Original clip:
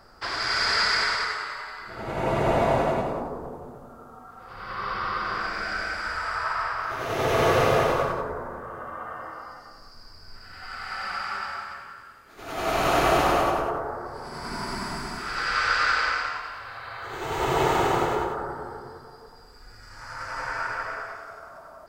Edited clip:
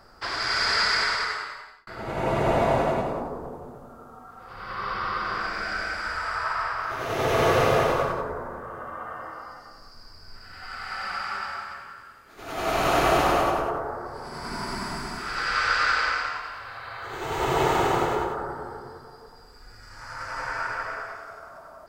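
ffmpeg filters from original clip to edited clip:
-filter_complex "[0:a]asplit=2[s0][s1];[s0]atrim=end=1.87,asetpts=PTS-STARTPTS,afade=t=out:st=1.36:d=0.51[s2];[s1]atrim=start=1.87,asetpts=PTS-STARTPTS,afade=t=in:d=0.004:c=hsin[s3];[s2][s3]concat=n=2:v=0:a=1"

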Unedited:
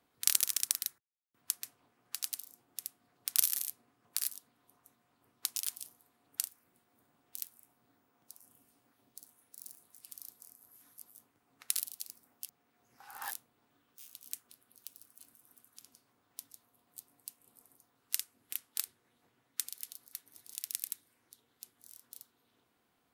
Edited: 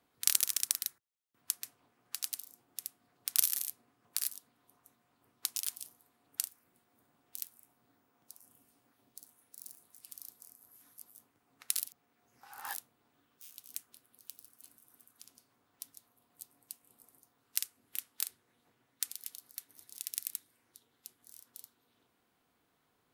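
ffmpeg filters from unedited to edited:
-filter_complex "[0:a]asplit=2[s0][s1];[s0]atrim=end=11.882[s2];[s1]atrim=start=12.448[s3];[s2][s3]acrossfade=d=0.004:c1=hsin:c2=hsin"

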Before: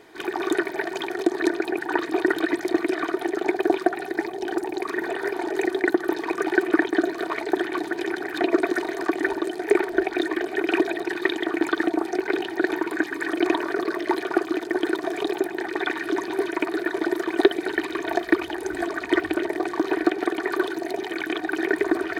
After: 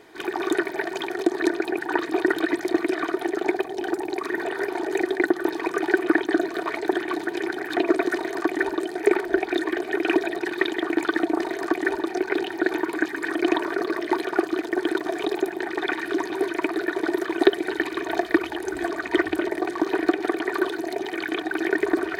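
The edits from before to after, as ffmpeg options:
-filter_complex "[0:a]asplit=4[s0][s1][s2][s3];[s0]atrim=end=3.652[s4];[s1]atrim=start=4.288:end=12.042[s5];[s2]atrim=start=8.778:end=9.442[s6];[s3]atrim=start=12.038[s7];[s4][s5]acrossfade=d=0.004:c1=hsin:c2=hsin[s8];[s8][s6]acrossfade=d=0.004:c1=hsin:c2=hsin[s9];[s9][s7]acrossfade=d=0.004:c1=hsin:c2=hsin"

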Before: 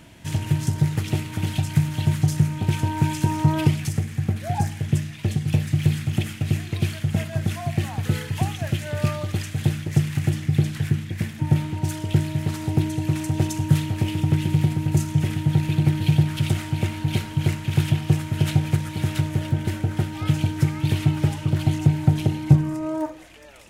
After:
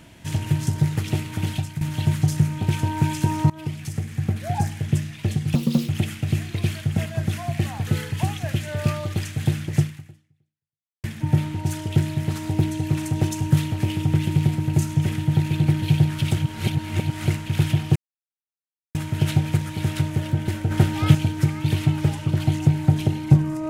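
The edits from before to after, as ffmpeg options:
-filter_complex "[0:a]asplit=11[s0][s1][s2][s3][s4][s5][s6][s7][s8][s9][s10];[s0]atrim=end=1.81,asetpts=PTS-STARTPTS,afade=t=out:st=1.5:d=0.31:silence=0.199526[s11];[s1]atrim=start=1.81:end=3.5,asetpts=PTS-STARTPTS,afade=t=in:d=0.004:c=hsin:silence=0.199526,afade=t=out:st=1.686:d=0.004:c=hsin:silence=0.0841395[s12];[s2]atrim=start=3.5:end=5.554,asetpts=PTS-STARTPTS,afade=t=in:d=0.74:silence=0.0841395[s13];[s3]atrim=start=5.55:end=6.07,asetpts=PTS-STARTPTS,asetrate=67914,aresample=44100[s14];[s4]atrim=start=6.066:end=11.22,asetpts=PTS-STARTPTS,afade=t=out:st=3.924:d=1.23:c=exp[s15];[s5]atrim=start=11.22:end=16.562,asetpts=PTS-STARTPTS,afade=t=in:d=0.004:c=hsin[s16];[s6]atrim=start=16.558:end=17.452,asetpts=PTS-STARTPTS,areverse[s17];[s7]atrim=start=17.448:end=18.14,asetpts=PTS-STARTPTS,afade=t=out:st=0.688:d=0.004:c=hsin,apad=pad_dur=0.99[s18];[s8]atrim=start=18.14:end=19.902,asetpts=PTS-STARTPTS,afade=t=in:d=0.004:c=hsin[s19];[s9]atrim=start=19.898:end=20.342,asetpts=PTS-STARTPTS,volume=2[s20];[s10]atrim=start=20.338[s21];[s11][s12][s13]concat=n=3:v=0:a=1[s22];[s22][s14]acrossfade=d=0.004:c1=hsin:c2=hsin[s23];[s15][s16]concat=n=2:v=0:a=1[s24];[s23][s24]acrossfade=d=0.004:c1=hsin:c2=hsin[s25];[s25][s17]acrossfade=d=0.004:c1=hsin:c2=hsin[s26];[s18][s19]concat=n=2:v=0:a=1[s27];[s26][s27]acrossfade=d=0.004:c1=hsin:c2=hsin[s28];[s28][s20]acrossfade=d=0.004:c1=hsin:c2=hsin[s29];[s29][s21]acrossfade=d=0.004:c1=hsin:c2=hsin"

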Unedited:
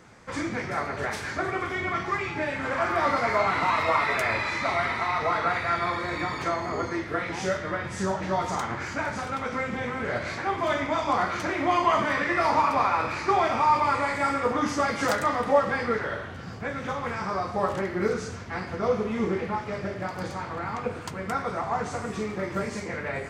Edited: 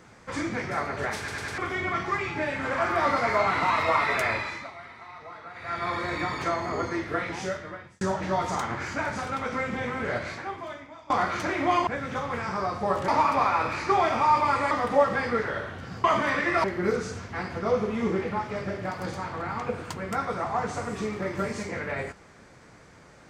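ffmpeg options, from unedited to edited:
-filter_complex "[0:a]asplit=14[s0][s1][s2][s3][s4][s5][s6][s7][s8][s9][s10][s11][s12][s13];[s0]atrim=end=1.282[s14];[s1]atrim=start=1.178:end=1.282[s15];[s2]atrim=start=1.178:end=1.282[s16];[s3]atrim=start=1.178:end=1.282[s17];[s4]atrim=start=1.578:end=4.71,asetpts=PTS-STARTPTS,afade=t=out:st=2.682:d=0.45:silence=0.133352[s18];[s5]atrim=start=4.71:end=5.54,asetpts=PTS-STARTPTS,volume=0.133[s19];[s6]atrim=start=5.54:end=8.01,asetpts=PTS-STARTPTS,afade=t=in:d=0.45:silence=0.133352,afade=t=out:st=1.66:d=0.81[s20];[s7]atrim=start=8.01:end=11.1,asetpts=PTS-STARTPTS,afade=t=in:d=0.004:c=hsin,afade=t=out:st=2.12:d=0.97:c=qua:silence=0.0841395[s21];[s8]atrim=start=11.1:end=11.872,asetpts=PTS-STARTPTS,afade=t=in:d=0.004:c=hsin:silence=0.0841395[s22];[s9]atrim=start=16.598:end=17.812[s23];[s10]atrim=start=12.468:end=14.102[s24];[s11]atrim=start=15.268:end=16.602[s25];[s12]atrim=start=11.868:end=12.472[s26];[s13]atrim=start=17.808[s27];[s14][s15]acrossfade=d=0.004:c1=hsin:c2=hsin[s28];[s28][s16]acrossfade=d=0.004:c1=hsin:c2=hsin[s29];[s29][s17]acrossfade=d=0.004:c1=hsin:c2=hsin[s30];[s18][s19][s20][s21][s22]concat=n=5:v=0:a=1[s31];[s30][s31]acrossfade=d=0.004:c1=hsin:c2=hsin[s32];[s32][s23]acrossfade=d=0.004:c1=hsin:c2=hsin[s33];[s33][s24]acrossfade=d=0.004:c1=hsin:c2=hsin[s34];[s34][s25]acrossfade=d=0.004:c1=hsin:c2=hsin[s35];[s35][s26]acrossfade=d=0.004:c1=hsin:c2=hsin[s36];[s36][s27]acrossfade=d=0.004:c1=hsin:c2=hsin"

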